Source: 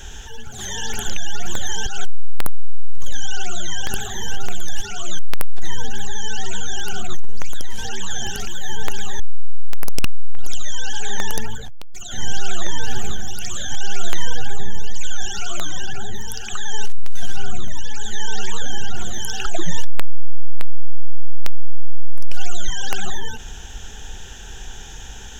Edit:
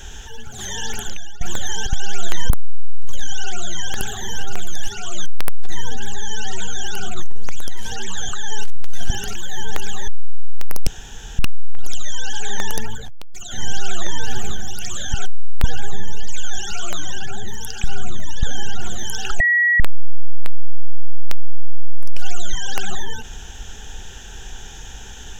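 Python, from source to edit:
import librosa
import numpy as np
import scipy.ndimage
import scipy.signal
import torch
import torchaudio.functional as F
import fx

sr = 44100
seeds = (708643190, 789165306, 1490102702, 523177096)

y = fx.edit(x, sr, fx.fade_out_to(start_s=0.87, length_s=0.54, floor_db=-18.0),
    fx.swap(start_s=1.93, length_s=0.5, other_s=13.74, other_length_s=0.57),
    fx.insert_room_tone(at_s=9.99, length_s=0.52),
    fx.move(start_s=16.51, length_s=0.81, to_s=8.22),
    fx.cut(start_s=17.91, length_s=0.67),
    fx.bleep(start_s=19.55, length_s=0.4, hz=1920.0, db=-12.5), tone=tone)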